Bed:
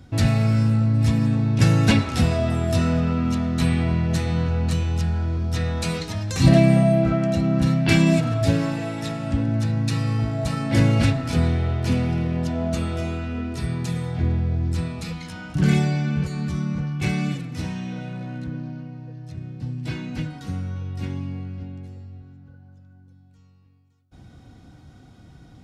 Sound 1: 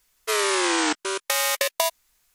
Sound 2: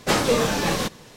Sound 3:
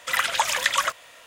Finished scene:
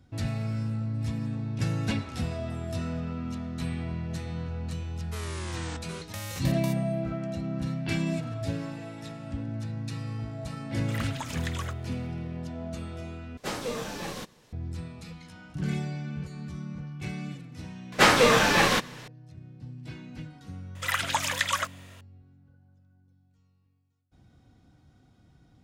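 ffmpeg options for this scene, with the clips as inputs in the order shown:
ffmpeg -i bed.wav -i cue0.wav -i cue1.wav -i cue2.wav -filter_complex "[3:a]asplit=2[link_01][link_02];[2:a]asplit=2[link_03][link_04];[0:a]volume=-12dB[link_05];[link_04]equalizer=frequency=1800:width=0.55:gain=9[link_06];[link_05]asplit=2[link_07][link_08];[link_07]atrim=end=13.374[link_09];[link_03]atrim=end=1.16,asetpts=PTS-STARTPTS,volume=-13dB[link_10];[link_08]atrim=start=14.526[link_11];[1:a]atrim=end=2.34,asetpts=PTS-STARTPTS,volume=-17.5dB,afade=type=in:duration=0.004:curve=hsin,afade=type=out:start_time=2.336:duration=0.004:curve=hsin,adelay=4840[link_12];[link_01]atrim=end=1.26,asetpts=PTS-STARTPTS,volume=-16dB,afade=type=in:duration=0.004:curve=hsin,afade=type=out:start_time=1.256:duration=0.004:curve=hsin,adelay=10810[link_13];[link_06]atrim=end=1.16,asetpts=PTS-STARTPTS,volume=-2.5dB,afade=type=in:duration=0.004:curve=hsin,afade=type=out:start_time=1.156:duration=0.004:curve=hsin,adelay=17920[link_14];[link_02]atrim=end=1.26,asetpts=PTS-STARTPTS,volume=-5dB,afade=type=in:duration=0.004:curve=hsin,afade=type=out:start_time=1.256:duration=0.004:curve=hsin,adelay=20750[link_15];[link_09][link_10]acrossfade=duration=0.004:curve1=hsin:curve2=hsin[link_16];[link_16][link_11]acrossfade=duration=0.004:curve1=hsin:curve2=hsin[link_17];[link_17][link_12][link_13][link_14][link_15]amix=inputs=5:normalize=0" out.wav

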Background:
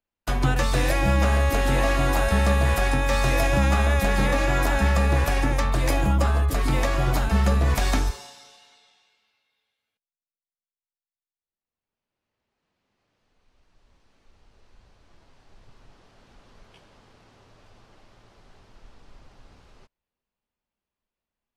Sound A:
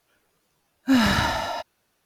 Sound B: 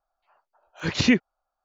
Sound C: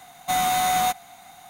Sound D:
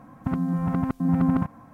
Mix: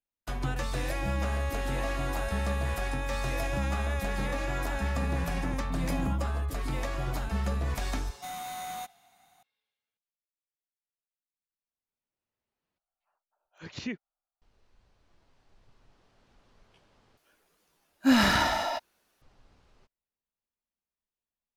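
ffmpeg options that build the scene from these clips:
ffmpeg -i bed.wav -i cue0.wav -i cue1.wav -i cue2.wav -i cue3.wav -filter_complex "[0:a]volume=-10dB[link_01];[1:a]equalizer=frequency=110:width_type=o:width=0.99:gain=-9[link_02];[link_01]asplit=3[link_03][link_04][link_05];[link_03]atrim=end=12.784[link_06];[2:a]atrim=end=1.64,asetpts=PTS-STARTPTS,volume=-17dB[link_07];[link_04]atrim=start=14.416:end=17.174[link_08];[link_02]atrim=end=2.05,asetpts=PTS-STARTPTS,volume=-1.5dB[link_09];[link_05]atrim=start=19.216[link_10];[4:a]atrim=end=1.73,asetpts=PTS-STARTPTS,volume=-12.5dB,afade=type=in:duration=0.004:curve=hsin,afade=type=out:start_time=1.726:duration=0.004:curve=hsin,adelay=4700[link_11];[3:a]atrim=end=1.49,asetpts=PTS-STARTPTS,volume=-16.5dB,afade=type=in:duration=0.004:curve=hsin,afade=type=out:start_time=1.486:duration=0.004:curve=hsin,adelay=350154S[link_12];[link_06][link_07]acrossfade=duration=0.004:curve1=hsin:curve2=hsin[link_13];[link_13][link_08]acrossfade=duration=0.004:curve1=hsin:curve2=hsin[link_14];[link_14][link_09]acrossfade=duration=0.004:curve1=hsin:curve2=hsin[link_15];[link_15][link_10]acrossfade=duration=0.004:curve1=hsin:curve2=hsin[link_16];[link_16][link_11][link_12]amix=inputs=3:normalize=0" out.wav

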